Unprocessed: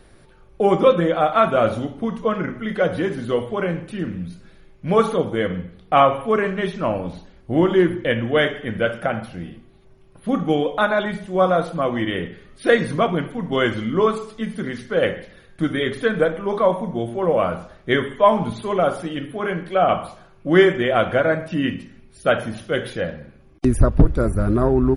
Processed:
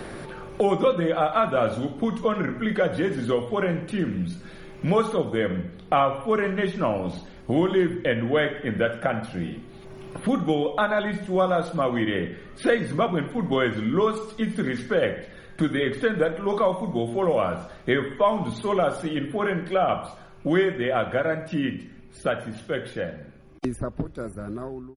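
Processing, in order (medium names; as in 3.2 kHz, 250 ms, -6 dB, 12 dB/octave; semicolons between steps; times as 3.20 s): fade out at the end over 6.01 s; three bands compressed up and down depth 70%; trim -3.5 dB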